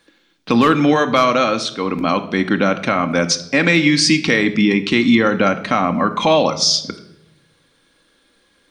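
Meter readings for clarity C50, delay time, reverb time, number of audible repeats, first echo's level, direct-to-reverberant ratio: 13.0 dB, no echo audible, 0.85 s, no echo audible, no echo audible, 7.5 dB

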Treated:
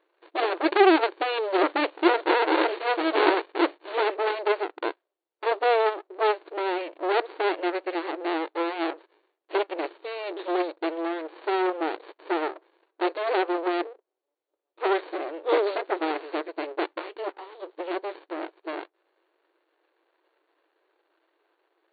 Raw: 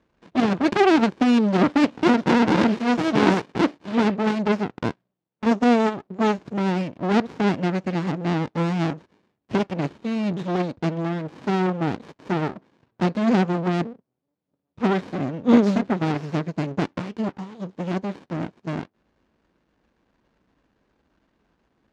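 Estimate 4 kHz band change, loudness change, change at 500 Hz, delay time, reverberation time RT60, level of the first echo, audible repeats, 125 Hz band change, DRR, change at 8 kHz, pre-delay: −0.5 dB, −4.0 dB, 0.0 dB, no echo audible, no reverb audible, no echo audible, no echo audible, below −40 dB, no reverb audible, can't be measured, no reverb audible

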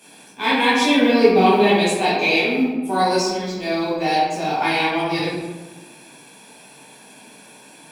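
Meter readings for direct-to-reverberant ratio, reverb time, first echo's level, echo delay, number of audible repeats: −10.0 dB, 1.3 s, no echo audible, no echo audible, no echo audible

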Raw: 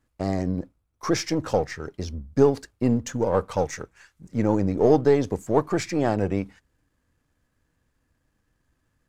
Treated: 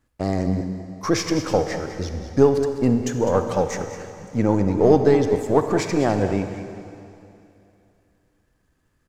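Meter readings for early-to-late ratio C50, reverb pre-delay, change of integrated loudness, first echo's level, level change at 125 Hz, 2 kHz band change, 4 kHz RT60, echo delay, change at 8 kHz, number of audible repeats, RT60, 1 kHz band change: 6.5 dB, 34 ms, +3.0 dB, −12.0 dB, +3.5 dB, +3.5 dB, 2.7 s, 204 ms, +3.5 dB, 1, 2.8 s, +3.5 dB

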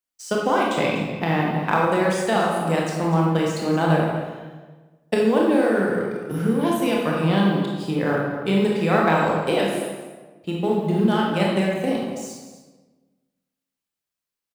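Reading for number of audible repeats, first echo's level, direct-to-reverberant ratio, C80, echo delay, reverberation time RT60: 1, −13.5 dB, −3.0 dB, 2.5 dB, 245 ms, 1.3 s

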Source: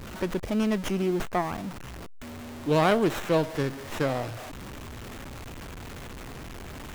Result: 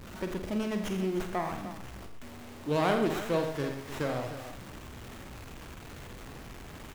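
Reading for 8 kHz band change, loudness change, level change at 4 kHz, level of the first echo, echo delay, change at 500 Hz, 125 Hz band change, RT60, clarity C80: −4.5 dB, −5.0 dB, −4.5 dB, −8.0 dB, 48 ms, −4.5 dB, −5.0 dB, no reverb audible, no reverb audible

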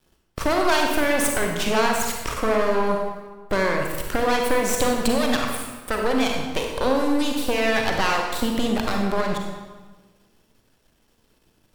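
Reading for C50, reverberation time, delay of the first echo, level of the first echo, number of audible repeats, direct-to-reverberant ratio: 2.0 dB, 1.3 s, no echo audible, no echo audible, no echo audible, 1.0 dB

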